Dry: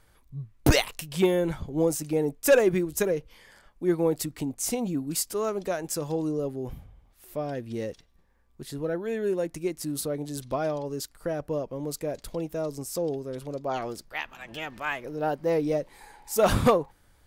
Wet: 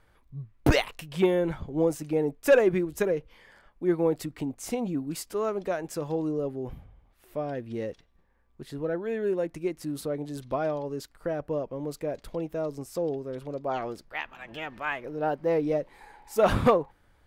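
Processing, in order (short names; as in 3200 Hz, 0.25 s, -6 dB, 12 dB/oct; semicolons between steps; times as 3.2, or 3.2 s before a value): tone controls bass -2 dB, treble -11 dB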